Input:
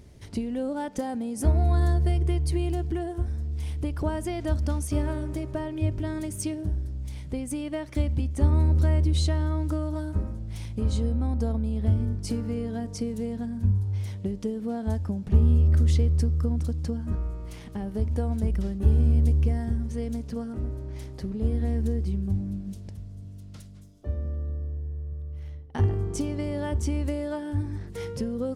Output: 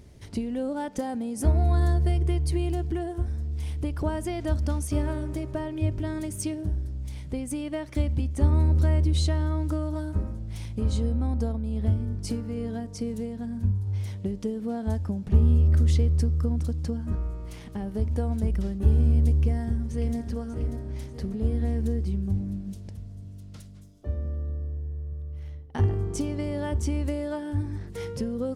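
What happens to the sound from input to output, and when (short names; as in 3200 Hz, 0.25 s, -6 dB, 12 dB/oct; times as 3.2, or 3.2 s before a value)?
11.38–13.87 tremolo 2.3 Hz, depth 31%
19.34–20.17 echo throw 0.59 s, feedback 50%, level -8.5 dB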